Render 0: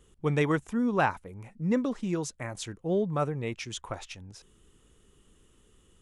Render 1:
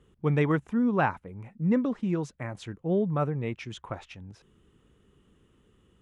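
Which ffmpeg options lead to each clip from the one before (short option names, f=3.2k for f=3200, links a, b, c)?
-af "highpass=f=170:p=1,bass=f=250:g=8,treble=f=4k:g=-14"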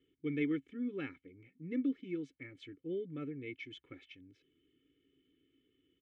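-filter_complex "[0:a]asplit=3[a][b][c];[a]bandpass=f=270:t=q:w=8,volume=0dB[d];[b]bandpass=f=2.29k:t=q:w=8,volume=-6dB[e];[c]bandpass=f=3.01k:t=q:w=8,volume=-9dB[f];[d][e][f]amix=inputs=3:normalize=0,aecho=1:1:2.3:0.88,volume=1.5dB"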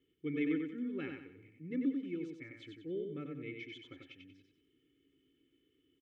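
-af "aecho=1:1:93|186|279|372|465:0.596|0.214|0.0772|0.0278|0.01,volume=-1.5dB"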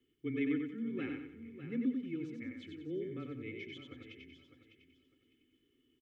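-af "afreqshift=-17,aecho=1:1:603|1206|1809:0.266|0.0585|0.0129"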